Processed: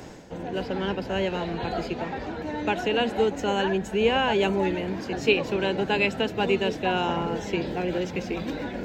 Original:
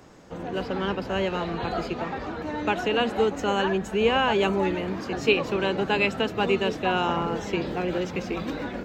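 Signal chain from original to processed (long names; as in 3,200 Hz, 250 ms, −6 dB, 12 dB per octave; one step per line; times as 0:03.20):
reversed playback
upward compression, threshold −30 dBFS
reversed playback
parametric band 1,200 Hz −11 dB 0.26 octaves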